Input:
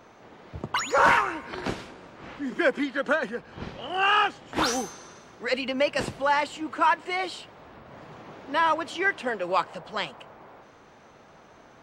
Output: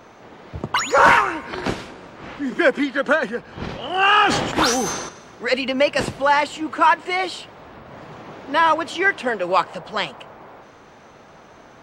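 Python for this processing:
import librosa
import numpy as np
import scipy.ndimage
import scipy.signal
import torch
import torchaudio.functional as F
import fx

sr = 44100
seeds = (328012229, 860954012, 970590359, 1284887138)

y = fx.sustainer(x, sr, db_per_s=42.0, at=(3.46, 5.09))
y = y * 10.0 ** (6.5 / 20.0)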